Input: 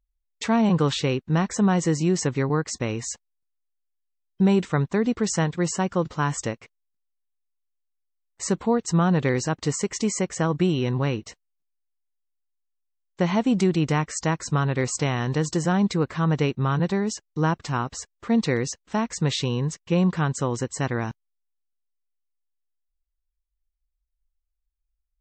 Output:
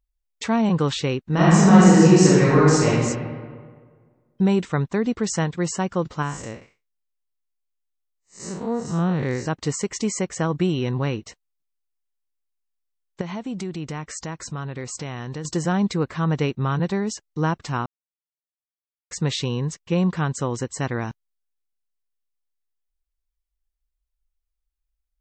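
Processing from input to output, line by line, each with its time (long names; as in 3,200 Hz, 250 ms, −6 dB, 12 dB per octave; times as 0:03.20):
0:01.23–0:02.87: thrown reverb, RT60 1.7 s, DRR −9 dB
0:06.22–0:09.46: spectrum smeared in time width 144 ms
0:13.21–0:15.45: downward compressor 2.5 to 1, threshold −31 dBFS
0:17.86–0:19.11: silence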